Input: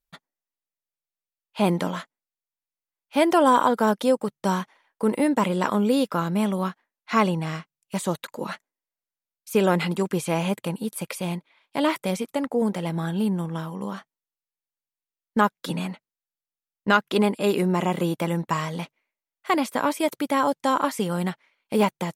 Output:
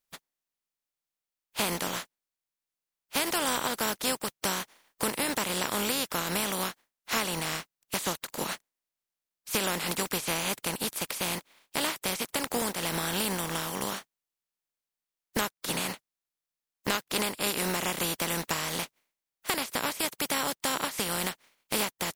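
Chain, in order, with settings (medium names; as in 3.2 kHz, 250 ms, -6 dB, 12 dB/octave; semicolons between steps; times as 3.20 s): spectral contrast reduction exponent 0.37; compression 4:1, threshold -27 dBFS, peak gain reduction 12 dB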